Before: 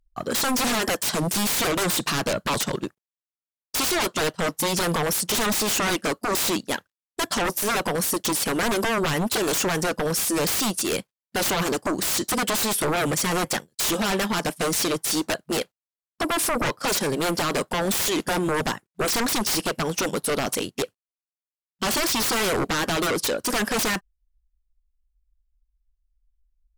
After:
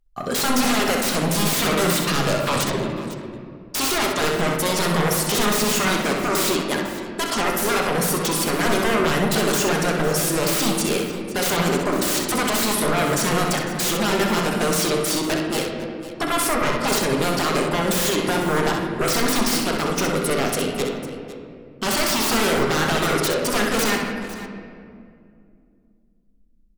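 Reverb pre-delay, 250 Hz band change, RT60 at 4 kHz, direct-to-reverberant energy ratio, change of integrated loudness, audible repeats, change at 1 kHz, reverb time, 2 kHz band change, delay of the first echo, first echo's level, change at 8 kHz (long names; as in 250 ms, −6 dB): 5 ms, +4.5 dB, 1.5 s, −1.0 dB, +3.0 dB, 2, +4.0 dB, 2.4 s, +3.5 dB, 64 ms, −5.5 dB, +1.0 dB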